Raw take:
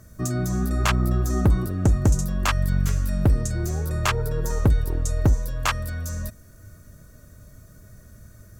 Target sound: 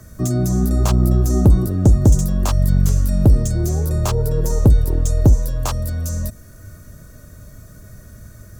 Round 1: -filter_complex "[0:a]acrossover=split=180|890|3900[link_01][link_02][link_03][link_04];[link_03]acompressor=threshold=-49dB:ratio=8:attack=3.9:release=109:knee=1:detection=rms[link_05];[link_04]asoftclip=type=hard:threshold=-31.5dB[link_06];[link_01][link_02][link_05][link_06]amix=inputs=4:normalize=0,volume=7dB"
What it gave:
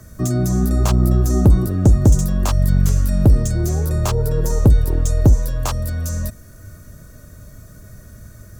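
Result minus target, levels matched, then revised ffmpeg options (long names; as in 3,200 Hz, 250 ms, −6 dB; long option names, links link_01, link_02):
downward compressor: peak gain reduction −5.5 dB
-filter_complex "[0:a]acrossover=split=180|890|3900[link_01][link_02][link_03][link_04];[link_03]acompressor=threshold=-55.5dB:ratio=8:attack=3.9:release=109:knee=1:detection=rms[link_05];[link_04]asoftclip=type=hard:threshold=-31.5dB[link_06];[link_01][link_02][link_05][link_06]amix=inputs=4:normalize=0,volume=7dB"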